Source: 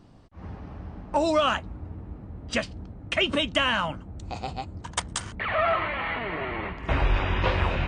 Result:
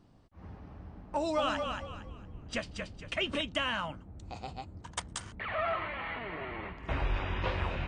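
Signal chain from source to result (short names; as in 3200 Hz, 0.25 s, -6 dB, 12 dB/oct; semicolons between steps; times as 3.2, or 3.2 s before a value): 1.1–3.41 frequency-shifting echo 0.229 s, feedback 32%, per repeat -31 Hz, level -5 dB; gain -8.5 dB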